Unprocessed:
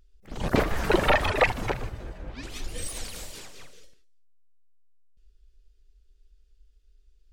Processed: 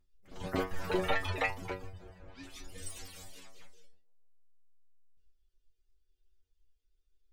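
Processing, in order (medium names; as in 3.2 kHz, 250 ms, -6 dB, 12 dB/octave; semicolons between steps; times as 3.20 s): reverb removal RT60 0.53 s; inharmonic resonator 91 Hz, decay 0.32 s, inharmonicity 0.002; on a send: band-passed feedback delay 152 ms, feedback 62%, band-pass 610 Hz, level -23.5 dB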